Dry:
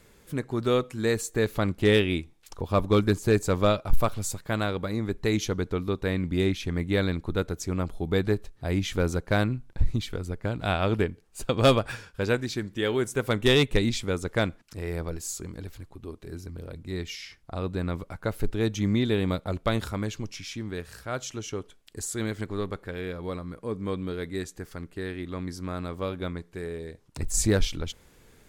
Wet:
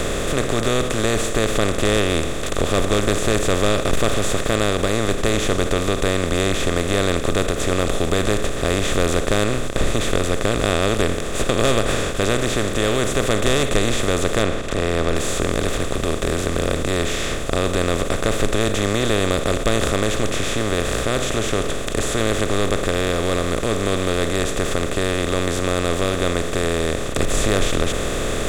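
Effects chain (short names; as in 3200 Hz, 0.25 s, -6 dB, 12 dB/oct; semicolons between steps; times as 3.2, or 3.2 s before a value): per-bin compression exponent 0.2; 14.42–15.15 high shelf 7300 Hz -10.5 dB; ending taper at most 150 dB/s; gain -4 dB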